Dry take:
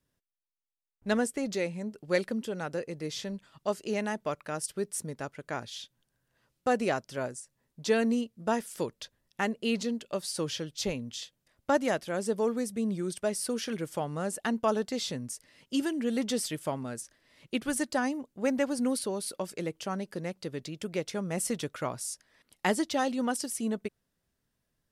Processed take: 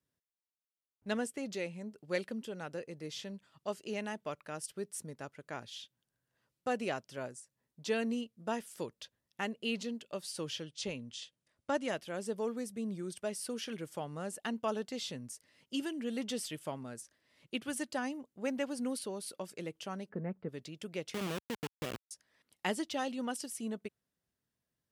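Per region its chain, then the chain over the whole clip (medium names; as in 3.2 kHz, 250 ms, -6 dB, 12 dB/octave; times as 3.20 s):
10.63–11.95 s: brick-wall FIR low-pass 11 kHz + band-stop 760 Hz, Q 14
20.09–20.49 s: low-pass 1.9 kHz 24 dB/octave + bass shelf 480 Hz +7 dB + comb 4.6 ms, depth 38%
21.14–22.11 s: steep low-pass 620 Hz + compression, threshold -37 dBFS + companded quantiser 2-bit
whole clip: high-pass 68 Hz; dynamic bell 2.9 kHz, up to +6 dB, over -53 dBFS, Q 2.8; trim -7.5 dB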